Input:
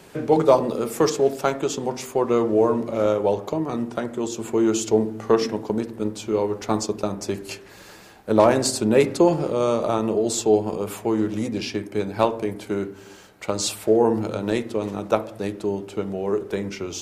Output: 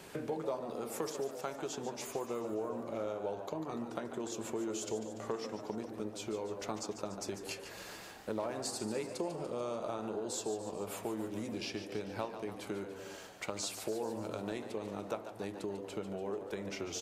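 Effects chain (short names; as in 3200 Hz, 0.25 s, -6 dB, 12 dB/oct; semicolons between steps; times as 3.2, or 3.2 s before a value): low shelf 430 Hz -3.5 dB; compressor 4:1, threshold -35 dBFS, peak gain reduction 19.5 dB; on a send: frequency-shifting echo 0.145 s, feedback 60%, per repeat +85 Hz, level -10.5 dB; on the sum: gain -3 dB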